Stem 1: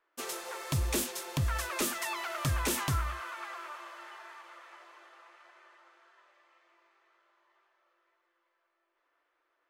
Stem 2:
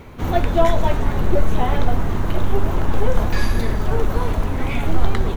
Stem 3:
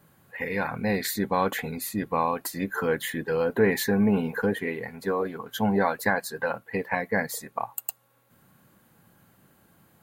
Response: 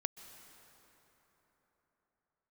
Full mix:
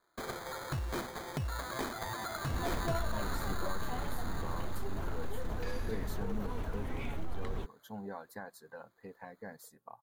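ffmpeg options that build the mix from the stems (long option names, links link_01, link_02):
-filter_complex "[0:a]acompressor=threshold=-43dB:ratio=2,acrusher=samples=16:mix=1:aa=0.000001,volume=2.5dB[link_01];[1:a]alimiter=limit=-11.5dB:level=0:latency=1:release=42,adelay=2300,volume=-16dB[link_02];[2:a]equalizer=frequency=2300:width=2.2:gain=-12.5,adelay=2300,volume=-19.5dB[link_03];[link_01][link_02][link_03]amix=inputs=3:normalize=0"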